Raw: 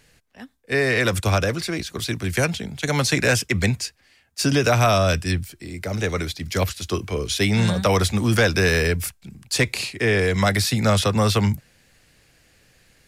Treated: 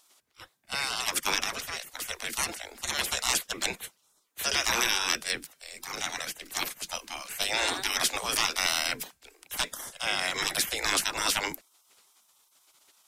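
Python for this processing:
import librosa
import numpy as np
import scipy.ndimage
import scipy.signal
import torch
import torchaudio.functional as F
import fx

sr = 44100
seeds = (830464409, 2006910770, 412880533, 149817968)

y = fx.spec_gate(x, sr, threshold_db=-20, keep='weak')
y = F.gain(torch.from_numpy(y), 3.0).numpy()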